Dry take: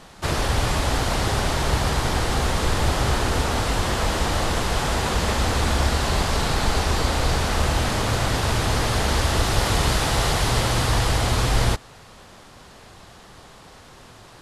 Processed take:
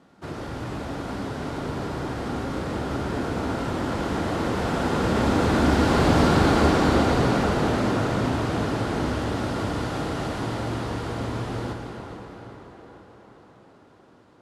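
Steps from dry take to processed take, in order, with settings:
source passing by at 0:06.25, 8 m/s, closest 5.7 metres
high-pass filter 170 Hz 12 dB per octave
spectral tilt −3 dB per octave
in parallel at −0.5 dB: downward compressor, threshold −36 dBFS, peak gain reduction 16.5 dB
on the sum: hard clipping −16 dBFS, distortion −21 dB
hollow resonant body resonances 290/1,400 Hz, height 6 dB, ringing for 25 ms
on a send: tape delay 416 ms, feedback 67%, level −9 dB, low-pass 3,400 Hz
on the sum: dense smooth reverb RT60 3.8 s, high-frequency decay 0.85×, DRR 3 dB

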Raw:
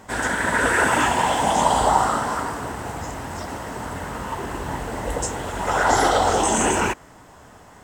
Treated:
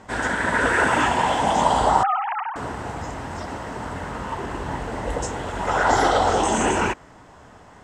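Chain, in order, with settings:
0:02.03–0:02.56: three sine waves on the formant tracks
high-frequency loss of the air 63 metres

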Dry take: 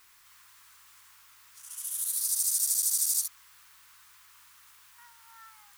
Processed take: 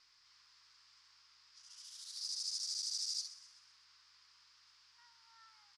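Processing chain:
transistor ladder low-pass 5,300 Hz, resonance 75%
echo with shifted repeats 127 ms, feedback 50%, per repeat +54 Hz, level −15.5 dB

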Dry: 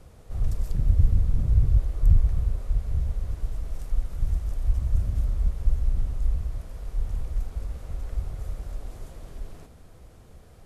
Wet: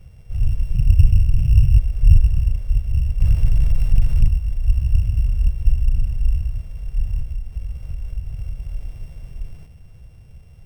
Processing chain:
samples sorted by size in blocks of 16 samples
0:03.20–0:04.28: leveller curve on the samples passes 3
0:07.21–0:08.74: downward compressor, threshold −28 dBFS, peak gain reduction 7.5 dB
low shelf with overshoot 190 Hz +10 dB, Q 1.5
level −4 dB

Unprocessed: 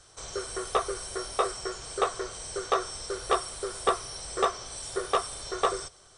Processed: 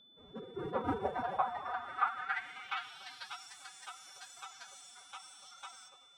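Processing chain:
high shelf with overshoot 3,500 Hz −10 dB, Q 1.5
on a send at −9 dB: convolution reverb, pre-delay 4 ms
on the sum: delay with pitch and tempo change per echo 138 ms, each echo +4 semitones, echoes 2, each echo −6 dB
bucket-brigade delay 290 ms, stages 1,024, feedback 54%, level −4.5 dB
band-pass filter sweep 230 Hz → 6,500 Hz, 0:00.39–0:03.54
phase-vocoder pitch shift with formants kept +11.5 semitones
steady tone 3,500 Hz −60 dBFS

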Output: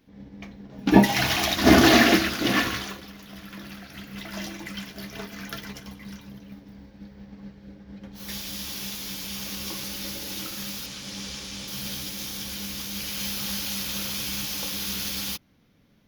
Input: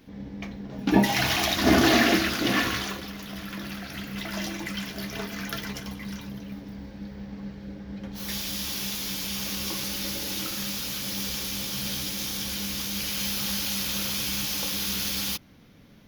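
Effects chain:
0:10.86–0:11.68: Savitzky-Golay smoothing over 9 samples
expander for the loud parts 1.5 to 1, over −43 dBFS
level +5.5 dB

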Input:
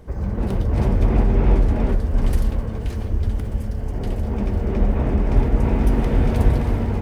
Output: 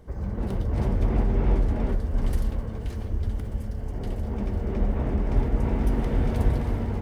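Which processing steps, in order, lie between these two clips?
notch filter 2,500 Hz, Q 23
level −6 dB

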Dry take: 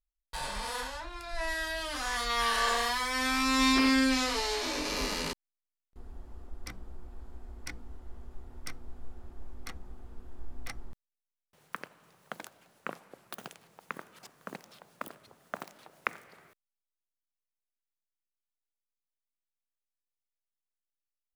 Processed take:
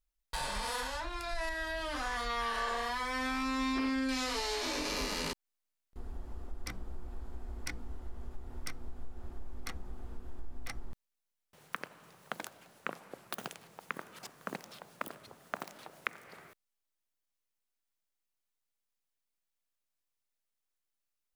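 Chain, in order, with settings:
0:01.49–0:04.09: parametric band 14,000 Hz −10.5 dB 2.6 octaves
downward compressor 3 to 1, threshold −38 dBFS, peak gain reduction 11.5 dB
level +4 dB

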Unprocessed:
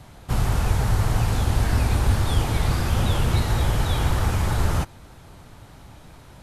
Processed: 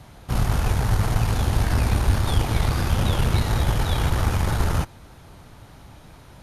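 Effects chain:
harmonic generator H 4 −19 dB, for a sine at −7 dBFS
notch filter 7,700 Hz, Q 10

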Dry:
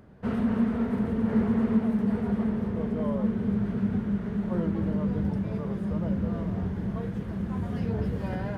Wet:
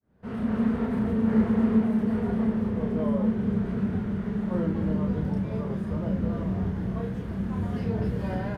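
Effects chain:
fade in at the beginning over 0.62 s
double-tracking delay 32 ms −4 dB

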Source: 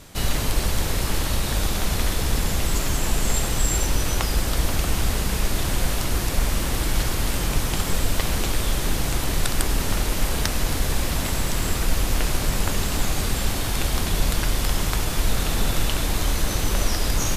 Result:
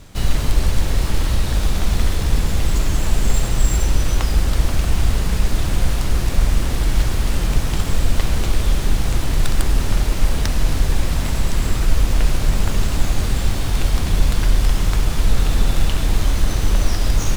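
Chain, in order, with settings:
running median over 3 samples
low-shelf EQ 160 Hz +8 dB
on a send: convolution reverb RT60 3.7 s, pre-delay 4 ms, DRR 9 dB
on the sum: level −1 dB

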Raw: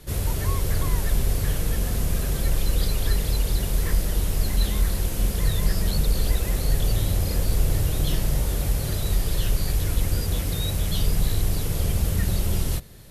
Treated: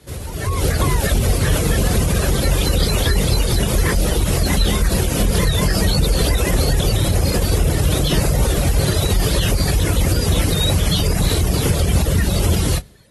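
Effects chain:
high-pass filter 46 Hz 24 dB per octave
high-shelf EQ 7,900 Hz −3 dB
mains-hum notches 50/100/150/200/250 Hz
brickwall limiter −20.5 dBFS, peak gain reduction 7.5 dB
reverb reduction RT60 0.92 s
automatic gain control gain up to 15 dB
AAC 32 kbit/s 32,000 Hz

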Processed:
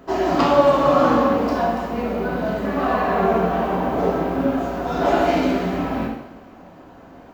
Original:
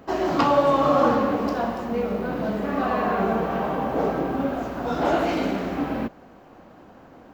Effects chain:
coupled-rooms reverb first 0.8 s, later 2.3 s, DRR −1.5 dB

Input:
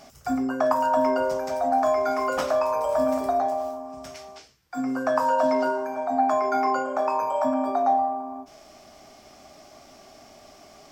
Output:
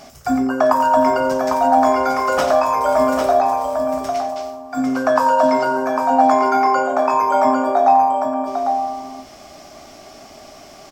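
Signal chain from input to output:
multi-tap delay 89/801 ms −11.5/−5.5 dB
level +7.5 dB

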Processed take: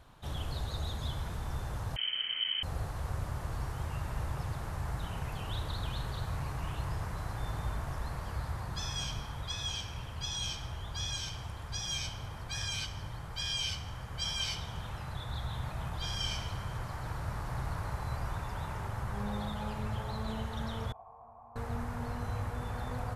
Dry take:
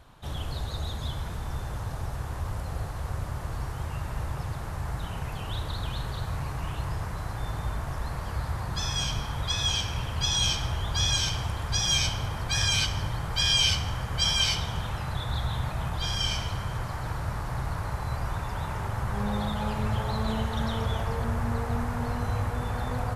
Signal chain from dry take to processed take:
speech leveller within 5 dB 2 s
0:01.96–0:02.63: voice inversion scrambler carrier 3,100 Hz
0:20.92–0:21.56: formant resonators in series a
level −8.5 dB

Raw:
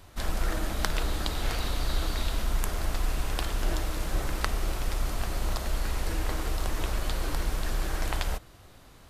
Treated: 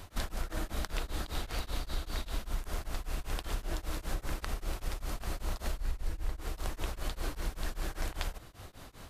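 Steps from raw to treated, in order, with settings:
0:05.77–0:06.41: low-shelf EQ 110 Hz +10.5 dB
downward compressor 5 to 1, threshold −35 dBFS, peak gain reduction 18.5 dB
tremolo along a rectified sine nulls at 5.1 Hz
level +5.5 dB

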